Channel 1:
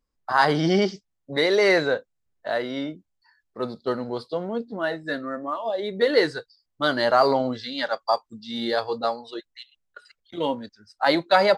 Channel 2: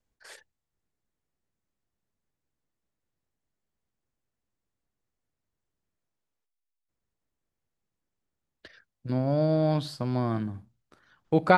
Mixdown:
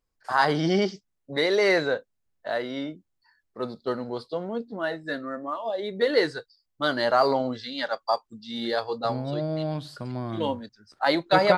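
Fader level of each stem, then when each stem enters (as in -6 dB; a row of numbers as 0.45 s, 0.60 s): -2.5 dB, -4.5 dB; 0.00 s, 0.00 s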